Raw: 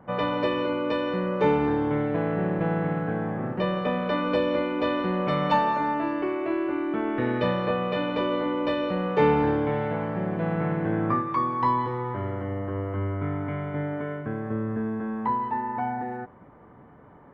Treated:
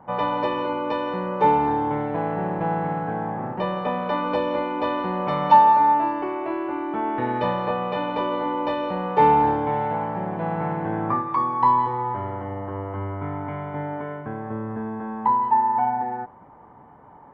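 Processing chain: bell 870 Hz +13 dB 0.53 oct; gain -2 dB

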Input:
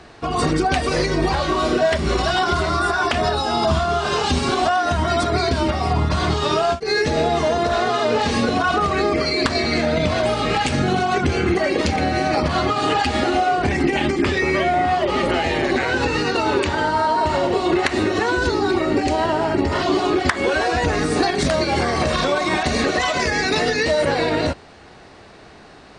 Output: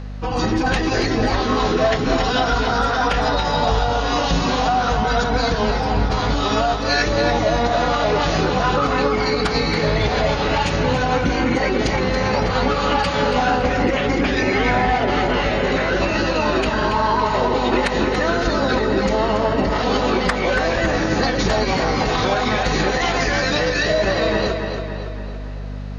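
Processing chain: formant-preserving pitch shift -6.5 st; hum 50 Hz, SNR 10 dB; tape echo 0.282 s, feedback 57%, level -5.5 dB, low-pass 5300 Hz

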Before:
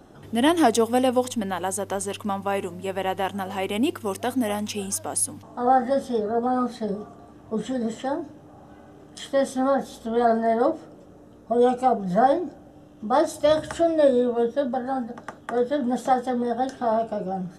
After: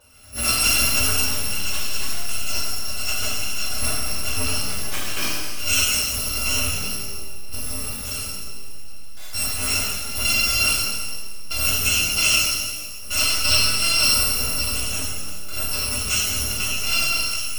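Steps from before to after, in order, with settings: FFT order left unsorted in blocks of 256 samples; LPF 4000 Hz 6 dB/oct; in parallel at -8.5 dB: Schmitt trigger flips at -24.5 dBFS; 0.93–1.76 on the sum: dispersion lows, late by 44 ms, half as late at 310 Hz; shimmer reverb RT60 1.5 s, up +12 st, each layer -8 dB, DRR -8 dB; gain -2.5 dB

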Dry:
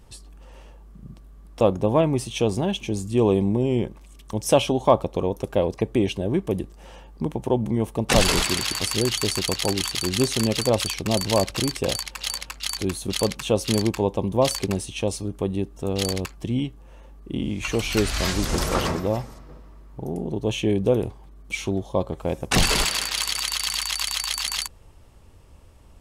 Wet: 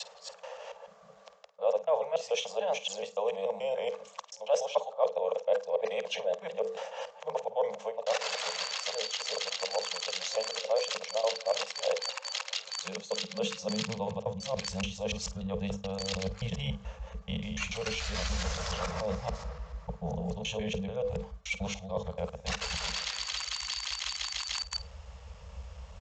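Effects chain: local time reversal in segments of 0.144 s; Chebyshev band-stop 210–440 Hz, order 5; bell 110 Hz -12 dB 0.76 oct; notches 50/100/150/200/250/300/350/400/450/500 Hz; reverse; compressor 8:1, threshold -37 dBFS, peak gain reduction 23.5 dB; reverse; high-pass sweep 560 Hz -> 62 Hz, 12.4–14.77; on a send: flutter echo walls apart 8.7 m, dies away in 0.21 s; on the sum: downsampling 16000 Hz; gain +5.5 dB

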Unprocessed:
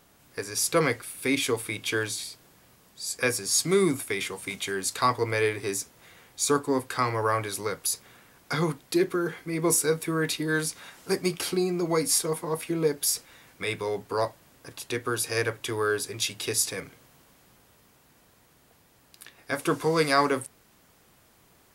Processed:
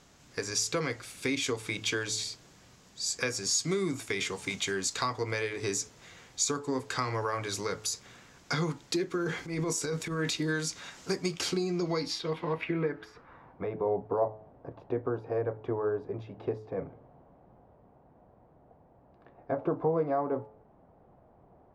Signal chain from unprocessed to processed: compressor 6:1, threshold -28 dBFS, peak gain reduction 11.5 dB; 9.17–10.32 transient shaper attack -10 dB, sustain +6 dB; bell 9200 Hz -11 dB 0.59 oct; de-hum 107.8 Hz, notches 13; low-pass sweep 7300 Hz -> 720 Hz, 11.6–13.72; tone controls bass +3 dB, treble +1 dB

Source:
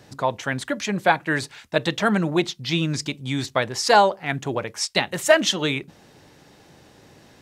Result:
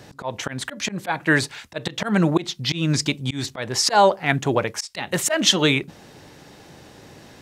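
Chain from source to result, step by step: auto swell 0.186 s; gain +5.5 dB

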